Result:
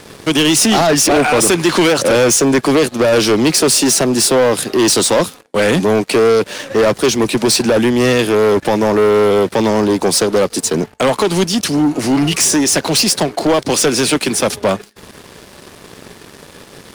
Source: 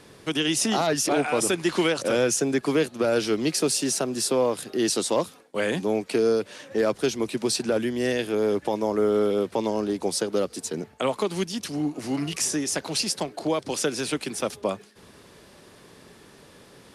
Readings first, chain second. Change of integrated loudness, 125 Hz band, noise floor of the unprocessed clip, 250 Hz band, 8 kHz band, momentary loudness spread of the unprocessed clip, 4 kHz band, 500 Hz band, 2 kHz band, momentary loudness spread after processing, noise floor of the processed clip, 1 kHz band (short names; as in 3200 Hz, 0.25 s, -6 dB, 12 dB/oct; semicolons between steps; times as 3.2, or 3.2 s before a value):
+12.5 dB, +13.5 dB, -52 dBFS, +12.0 dB, +13.5 dB, 6 LU, +13.0 dB, +11.5 dB, +13.0 dB, 5 LU, -41 dBFS, +13.0 dB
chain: sample leveller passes 3; gain +5.5 dB